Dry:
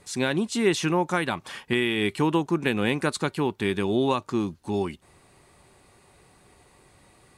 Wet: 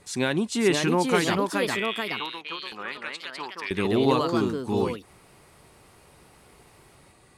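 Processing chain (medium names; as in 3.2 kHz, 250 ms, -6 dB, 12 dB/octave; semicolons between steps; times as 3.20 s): 1.47–3.71 s: LFO band-pass saw up 1.6 Hz 880–5400 Hz; ever faster or slower copies 546 ms, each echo +2 st, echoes 2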